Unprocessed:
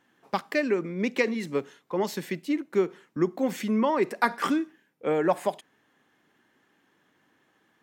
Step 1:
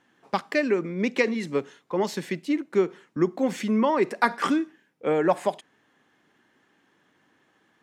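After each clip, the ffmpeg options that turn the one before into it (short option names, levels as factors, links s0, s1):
-af "lowpass=10000,volume=1.26"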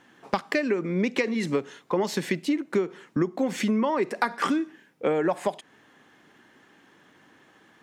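-af "acompressor=threshold=0.0316:ratio=6,volume=2.51"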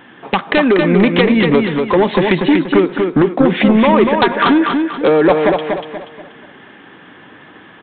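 -af "aresample=8000,aeval=exprs='0.398*sin(PI/2*3.16*val(0)/0.398)':c=same,aresample=44100,aecho=1:1:240|480|720|960|1200:0.596|0.226|0.086|0.0327|0.0124,volume=1.19"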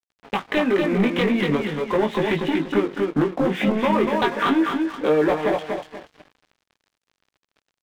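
-af "asoftclip=type=tanh:threshold=0.708,flanger=delay=18.5:depth=2.3:speed=0.44,aeval=exprs='sgn(val(0))*max(abs(val(0))-0.0168,0)':c=same,volume=0.631"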